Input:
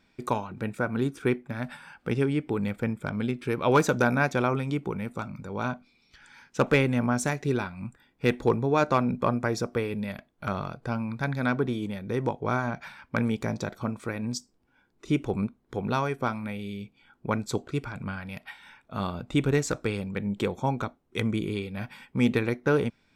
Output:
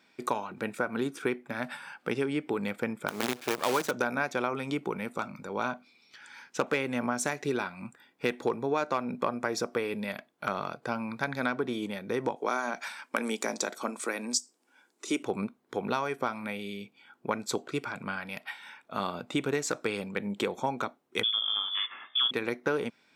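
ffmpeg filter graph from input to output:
-filter_complex "[0:a]asettb=1/sr,asplit=3[a][b][c];[a]atrim=end=3.084[d];[b]atrim=start=3.08:end=3.91,asetpts=PTS-STARTPTS,afade=t=in:d=0.004:c=qsin,afade=t=out:st=0.826:d=0.004:c=qsin,bandreject=f=50:t=h:w=6,bandreject=f=100:t=h:w=6,bandreject=f=150:t=h:w=6,acrusher=bits=5:dc=4:mix=0:aa=0.000001[e];[c]atrim=start=3.906[f];[d][e]acrossfade=d=0.004:c1=hsin:c2=qsin[g];[g][f]acrossfade=d=0.004:c1=qsin:c2=hsin,asettb=1/sr,asplit=3[h][i][j];[h]atrim=end=12.364[k];[i]atrim=start=12.36:end=15.23,asetpts=PTS-STARTPTS,afade=t=in:d=0.004:c=qsin,afade=t=out:st=2.866:d=0.004:c=qsin,highpass=f=220:w=0.5412,highpass=f=220:w=1.3066,equalizer=f=8k:t=o:w=1.2:g=12.5,aeval=exprs='0.251*(abs(mod(val(0)/0.251+3,4)-2)-1)':c=same[l];[j]atrim=start=15.226[m];[k][l]acrossfade=d=0.004:c1=hsin:c2=qsin[n];[n][m]acrossfade=d=0.004:c1=qsin:c2=hsin,asettb=1/sr,asplit=3[o][p][q];[o]atrim=end=21.234[r];[p]atrim=start=21.23:end=22.31,asetpts=PTS-STARTPTS,afade=t=in:d=0.004:c=qsin,afade=t=out:st=1.076:d=0.004:c=qsin,lowpass=f=3.1k:t=q:w=0.5098,lowpass=f=3.1k:t=q:w=0.6013,lowpass=f=3.1k:t=q:w=0.9,lowpass=f=3.1k:t=q:w=2.563,afreqshift=-3600,bandreject=f=62.87:t=h:w=4,bandreject=f=125.74:t=h:w=4,bandreject=f=188.61:t=h:w=4,bandreject=f=251.48:t=h:w=4,bandreject=f=314.35:t=h:w=4,bandreject=f=377.22:t=h:w=4,bandreject=f=440.09:t=h:w=4,bandreject=f=502.96:t=h:w=4,bandreject=f=565.83:t=h:w=4,bandreject=f=628.7:t=h:w=4,bandreject=f=691.57:t=h:w=4,bandreject=f=754.44:t=h:w=4,bandreject=f=817.31:t=h:w=4,bandreject=f=880.18:t=h:w=4,bandreject=f=943.05:t=h:w=4,bandreject=f=1.00592k:t=h:w=4,bandreject=f=1.06879k:t=h:w=4,bandreject=f=1.13166k:t=h:w=4,bandreject=f=1.19453k:t=h:w=4,bandreject=f=1.2574k:t=h:w=4,bandreject=f=1.32027k:t=h:w=4,bandreject=f=1.38314k:t=h:w=4,bandreject=f=1.44601k:t=h:w=4,bandreject=f=1.50888k:t=h:w=4,bandreject=f=1.57175k:t=h:w=4,bandreject=f=1.63462k:t=h:w=4,bandreject=f=1.69749k:t=h:w=4,bandreject=f=1.76036k:t=h:w=4,bandreject=f=1.82323k:t=h:w=4,bandreject=f=1.8861k:t=h:w=4,bandreject=f=1.94897k:t=h:w=4,bandreject=f=2.01184k:t=h:w=4,bandreject=f=2.07471k:t=h:w=4,bandreject=f=2.13758k:t=h:w=4,bandreject=f=2.20045k:t=h:w=4,bandreject=f=2.26332k:t=h:w=4[s];[q]atrim=start=22.306[t];[r][s]acrossfade=d=0.004:c1=hsin:c2=qsin[u];[u][t]acrossfade=d=0.004:c1=qsin:c2=hsin,highpass=170,lowshelf=f=230:g=-10.5,acompressor=threshold=-29dB:ratio=4,volume=3.5dB"

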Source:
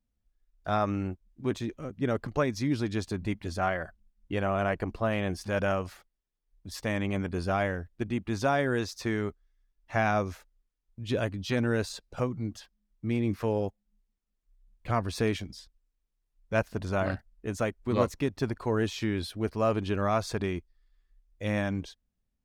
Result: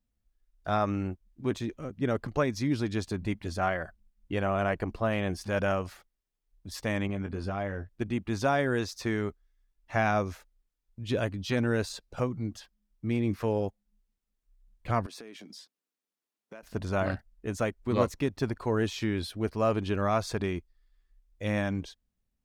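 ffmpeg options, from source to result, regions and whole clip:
-filter_complex "[0:a]asettb=1/sr,asplit=3[a][b][c];[a]atrim=end=7.074[d];[b]atrim=start=7.07:end=7.89,asetpts=PTS-STARTPTS,afade=t=in:d=0.004:c=qsin,afade=t=out:st=0.816:d=0.004:c=qsin,acompressor=threshold=-30dB:ratio=5:attack=3.2:release=140:knee=1:detection=peak,aemphasis=mode=reproduction:type=cd,asplit=2[e][f];[f]adelay=20,volume=-8.5dB[g];[e][g]amix=inputs=2:normalize=0,atrim=end_sample=36162[h];[c]atrim=start=7.886[i];[d][h]acrossfade=d=0.004:c1=hsin:c2=qsin[j];[j][i]acrossfade=d=0.004:c1=qsin:c2=hsin,asettb=1/sr,asplit=3[k][l][m];[k]atrim=end=15.064[n];[l]atrim=start=15.06:end=16.63,asetpts=PTS-STARTPTS,afade=t=in:d=0.004:c=qsin,afade=t=out:st=1.566:d=0.004:c=qsin,highpass=f=210:w=0.5412,highpass=f=210:w=1.3066,acompressor=threshold=-42dB:ratio=10:attack=3.2:release=140:knee=1:detection=peak[o];[m]atrim=start=16.626[p];[n][o]acrossfade=d=0.004:c1=hsin:c2=qsin[q];[q][p]acrossfade=d=0.004:c1=qsin:c2=hsin"

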